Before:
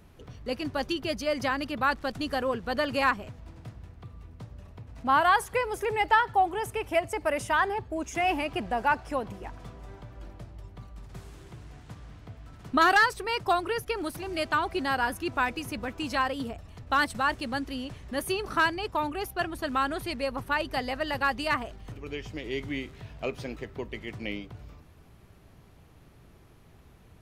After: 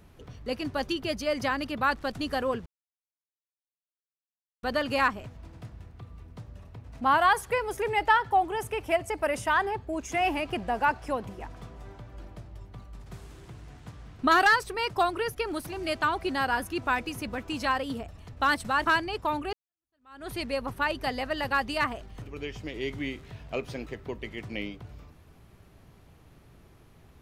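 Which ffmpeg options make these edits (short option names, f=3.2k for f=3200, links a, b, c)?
-filter_complex "[0:a]asplit=5[a][b][c][d][e];[a]atrim=end=2.66,asetpts=PTS-STARTPTS,afade=t=out:st=2.656:d=0.004:c=hsin,apad=pad_dur=1.97[f];[b]atrim=start=2.66:end=12.222,asetpts=PTS-STARTPTS,afade=t=in:d=0.004:c=hsin[g];[c]atrim=start=12.688:end=17.362[h];[d]atrim=start=18.558:end=19.23,asetpts=PTS-STARTPTS,afade=t=out:st=0.668:d=0.004:c=hsin[i];[e]atrim=start=19.23,asetpts=PTS-STARTPTS,afade=t=in:d=0.77:c=exp[j];[f][g]concat=n=2:v=0:a=1[k];[k][h]acrossfade=d=0.004:c1=hsin:c2=hsin[l];[i][j]concat=n=2:v=0:a=1[m];[l][m]acrossfade=d=0.004:c1=hsin:c2=hsin"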